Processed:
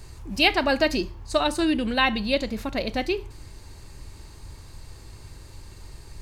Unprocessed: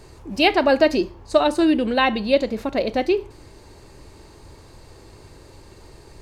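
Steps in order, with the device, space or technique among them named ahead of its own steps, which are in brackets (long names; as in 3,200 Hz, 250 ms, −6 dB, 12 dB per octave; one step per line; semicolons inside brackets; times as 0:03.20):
smiley-face EQ (low-shelf EQ 100 Hz +7 dB; parametric band 460 Hz −8.5 dB 1.9 octaves; high-shelf EQ 7,800 Hz +5.5 dB)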